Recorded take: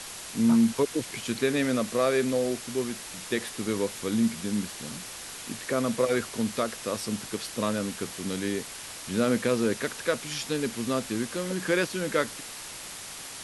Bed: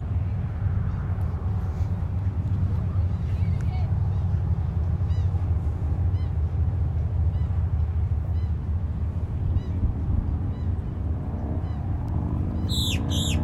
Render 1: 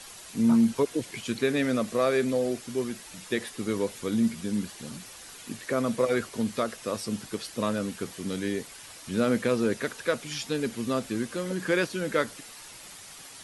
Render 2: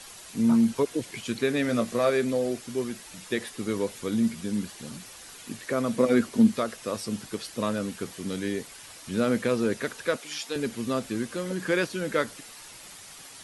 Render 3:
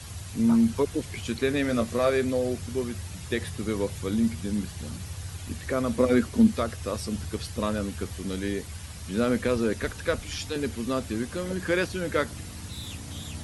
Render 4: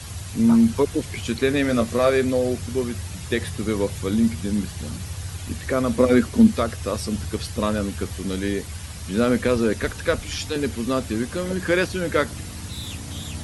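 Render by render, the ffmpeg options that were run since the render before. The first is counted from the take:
-af "afftdn=nr=8:nf=-41"
-filter_complex "[0:a]asettb=1/sr,asplit=3[a][b][c];[a]atrim=end=1.674[d];[b]atrim=start=1.67:end=2.1,asetpts=PTS-STARTPTS,afade=t=in:d=0.004:c=qsin,afade=t=out:st=0.426:d=0.004:c=qsin,asplit=2[e][f];[f]adelay=17,volume=-6dB[g];[e][g]amix=inputs=2:normalize=0,atrim=end_sample=18963[h];[c]atrim=start=2.096[i];[d][h]acrossfade=d=0.004:c1=hsin:c2=qsin[j];[j][i]acrossfade=d=0.004:c1=qsin:c2=hsin,asettb=1/sr,asplit=3[k][l][m];[k]atrim=end=5.964[n];[l]atrim=start=5.96:end=6.54,asetpts=PTS-STARTPTS,afade=t=in:d=0.004:c=qsin,afade=t=out:st=0.576:d=0.004:c=qsin,equalizer=f=240:w=1.8:g=11.5[o];[m]atrim=start=6.536[p];[n][o]acrossfade=d=0.004:c1=hsin:c2=qsin[q];[q][p]acrossfade=d=0.004:c1=qsin:c2=hsin,asettb=1/sr,asplit=3[r][s][t];[r]atrim=end=10.164[u];[s]atrim=start=10.16:end=10.56,asetpts=PTS-STARTPTS,afade=t=in:d=0.004:c=qsin,afade=t=out:st=0.396:d=0.004:c=qsin,highpass=400[v];[t]atrim=start=10.556[w];[u][v]acrossfade=d=0.004:c1=hsin:c2=qsin[x];[x][w]acrossfade=d=0.004:c1=qsin:c2=hsin"
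-filter_complex "[1:a]volume=-14dB[a];[0:a][a]amix=inputs=2:normalize=0"
-af "volume=5dB"

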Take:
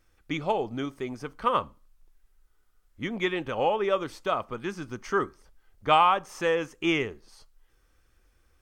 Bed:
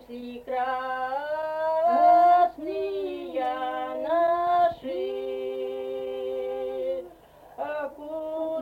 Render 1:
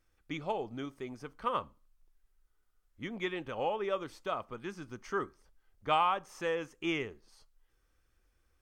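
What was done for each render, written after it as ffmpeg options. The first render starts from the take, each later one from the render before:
-af "volume=-8dB"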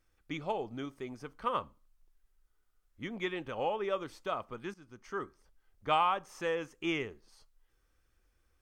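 -filter_complex "[0:a]asplit=2[a][b];[a]atrim=end=4.74,asetpts=PTS-STARTPTS,afade=t=out:st=4.736:d=0.004:c=hsin:silence=0.199526[c];[b]atrim=start=4.74,asetpts=PTS-STARTPTS,afade=t=in:d=1.14:c=qsin:silence=0.199526[d];[c][d]concat=n=2:v=0:a=1"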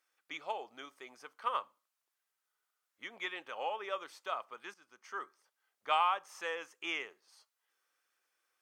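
-af "highpass=750"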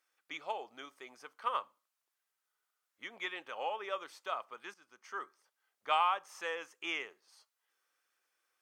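-af anull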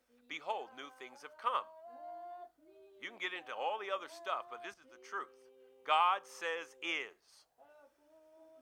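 -filter_complex "[1:a]volume=-31dB[a];[0:a][a]amix=inputs=2:normalize=0"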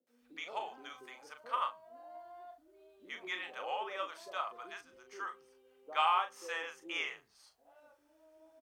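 -filter_complex "[0:a]asplit=2[a][b];[b]adelay=38,volume=-7.5dB[c];[a][c]amix=inputs=2:normalize=0,acrossover=split=170|510[d][e][f];[f]adelay=70[g];[d]adelay=210[h];[h][e][g]amix=inputs=3:normalize=0"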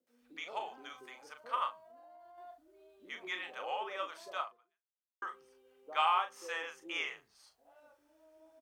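-filter_complex "[0:a]asettb=1/sr,asplit=3[a][b][c];[a]atrim=end=1.814[d];[b]atrim=start=1.81:end=2.38,asetpts=PTS-STARTPTS,afade=t=in:d=0.004:c=qsin,afade=t=out:st=0.566:d=0.004:c=qsin,acompressor=threshold=-54dB:ratio=6:attack=3.2:release=140:knee=1:detection=peak[e];[c]atrim=start=2.376[f];[d][e]acrossfade=d=0.004:c1=hsin:c2=qsin[g];[g][f]acrossfade=d=0.004:c1=qsin:c2=hsin,asplit=2[h][i];[h]atrim=end=5.22,asetpts=PTS-STARTPTS,afade=t=out:st=4.42:d=0.8:c=exp[j];[i]atrim=start=5.22,asetpts=PTS-STARTPTS,afade=t=in:d=0.004:c=hsin[k];[j][k]concat=n=2:v=0:a=1"

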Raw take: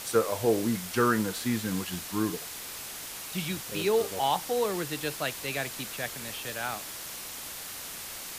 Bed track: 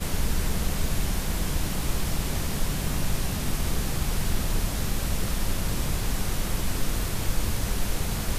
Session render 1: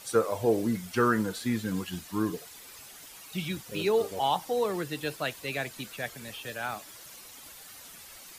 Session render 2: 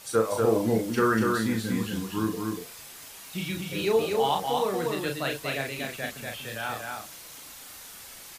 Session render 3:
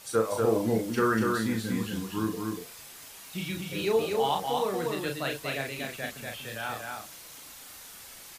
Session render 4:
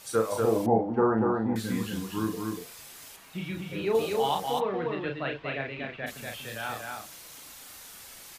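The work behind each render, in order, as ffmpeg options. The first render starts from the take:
-af "afftdn=nr=11:nf=-40"
-filter_complex "[0:a]asplit=2[a][b];[b]adelay=36,volume=-4dB[c];[a][c]amix=inputs=2:normalize=0,aecho=1:1:240:0.668"
-af "volume=-2dB"
-filter_complex "[0:a]asettb=1/sr,asplit=3[a][b][c];[a]atrim=end=0.664[d];[b]atrim=start=0.66:end=1.56,asetpts=PTS-STARTPTS,afade=t=in:d=0.004:c=qsin,afade=t=out:st=0.896:d=0.004:c=qsin,lowpass=f=800:t=q:w=8.3[e];[c]atrim=start=1.556[f];[d][e]acrossfade=d=0.004:c1=hsin:c2=qsin[g];[g][f]acrossfade=d=0.004:c1=qsin:c2=hsin,asettb=1/sr,asplit=3[h][i][j];[h]atrim=end=3.164[k];[i]atrim=start=3.16:end=3.95,asetpts=PTS-STARTPTS,afade=t=in:d=0.004:c=qsin,afade=t=out:st=0.786:d=0.004:c=qsin,acrossover=split=2800[l][m];[m]acompressor=threshold=-53dB:ratio=4:attack=1:release=60[n];[l][n]amix=inputs=2:normalize=0[o];[j]atrim=start=3.946[p];[k][o]acrossfade=d=0.004:c1=hsin:c2=qsin[q];[q][p]acrossfade=d=0.004:c1=qsin:c2=hsin,asplit=3[r][s][t];[r]afade=t=out:st=4.59:d=0.02[u];[s]lowpass=f=3k:w=0.5412,lowpass=f=3k:w=1.3066,afade=t=in:st=4.59:d=0.02,afade=t=out:st=6.06:d=0.02[v];[t]afade=t=in:st=6.06:d=0.02[w];[u][v][w]amix=inputs=3:normalize=0"

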